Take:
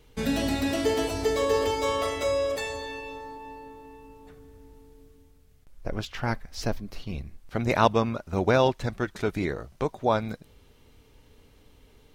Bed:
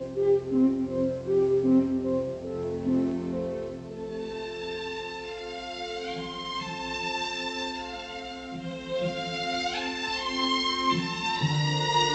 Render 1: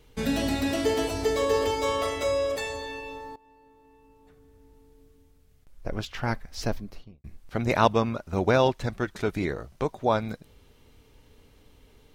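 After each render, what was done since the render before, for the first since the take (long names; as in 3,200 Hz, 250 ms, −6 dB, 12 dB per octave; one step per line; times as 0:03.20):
0:03.36–0:06.02: fade in, from −18.5 dB
0:06.76–0:07.24: fade out and dull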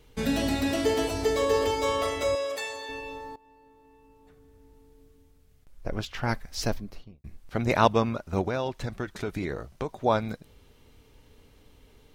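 0:02.35–0:02.89: high-pass filter 690 Hz 6 dB per octave
0:06.29–0:06.74: parametric band 12,000 Hz +5.5 dB 2.6 octaves
0:08.41–0:09.96: downward compressor 4 to 1, threshold −26 dBFS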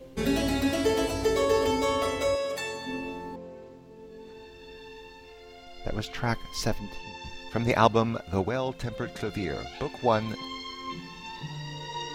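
mix in bed −12 dB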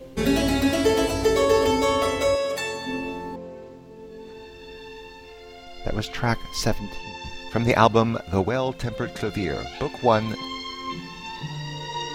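level +5 dB
brickwall limiter −2 dBFS, peak gain reduction 2.5 dB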